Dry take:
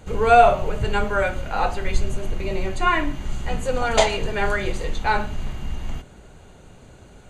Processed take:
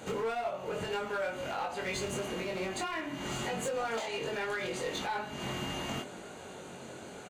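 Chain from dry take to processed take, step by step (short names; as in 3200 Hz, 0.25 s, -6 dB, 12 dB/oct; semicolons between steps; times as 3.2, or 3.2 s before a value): HPF 230 Hz 12 dB/oct; compressor 10:1, threshold -34 dBFS, peak gain reduction 25.5 dB; limiter -29.5 dBFS, peak gain reduction 7.5 dB; overloaded stage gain 34.5 dB; doubler 22 ms -2.5 dB; gain +3 dB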